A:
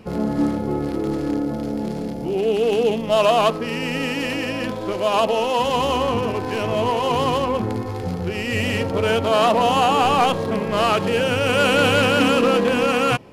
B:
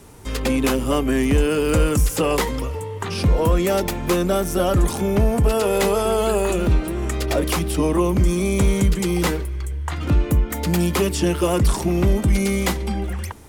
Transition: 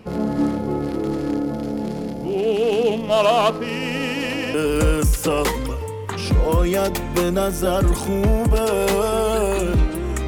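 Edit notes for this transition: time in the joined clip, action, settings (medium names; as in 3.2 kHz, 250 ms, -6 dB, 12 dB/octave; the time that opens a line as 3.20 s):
A
4.54 s: go over to B from 1.47 s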